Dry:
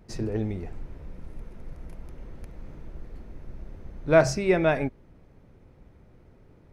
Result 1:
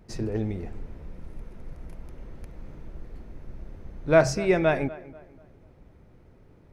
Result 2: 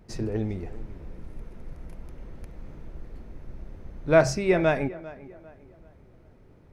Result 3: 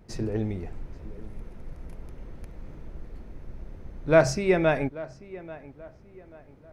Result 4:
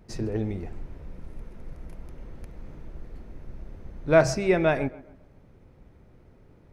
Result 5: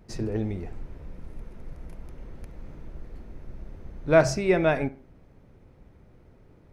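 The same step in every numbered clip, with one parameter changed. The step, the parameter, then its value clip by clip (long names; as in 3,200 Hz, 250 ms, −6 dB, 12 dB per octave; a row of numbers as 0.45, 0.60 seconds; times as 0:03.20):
tape delay, delay time: 243, 396, 836, 134, 67 milliseconds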